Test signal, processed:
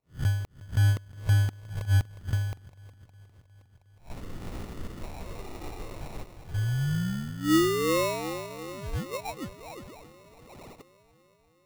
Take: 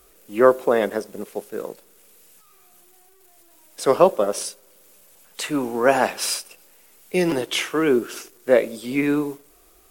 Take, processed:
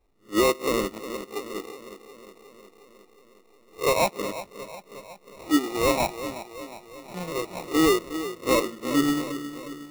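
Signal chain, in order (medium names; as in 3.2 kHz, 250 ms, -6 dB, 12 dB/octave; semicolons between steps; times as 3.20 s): reverse spectral sustain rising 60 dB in 0.31 s; phase shifter stages 12, 0.49 Hz, lowest notch 170–1200 Hz; overload inside the chain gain 16 dB; FFT filter 1.2 kHz 0 dB, 3.1 kHz -6 dB, 8.9 kHz -25 dB, 13 kHz -10 dB; feedback echo behind a low-pass 361 ms, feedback 70%, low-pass 1.1 kHz, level -8 dB; dynamic bell 310 Hz, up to +7 dB, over -42 dBFS, Q 5.1; sample-rate reducer 1.6 kHz, jitter 0%; upward expansion 1.5:1, over -35 dBFS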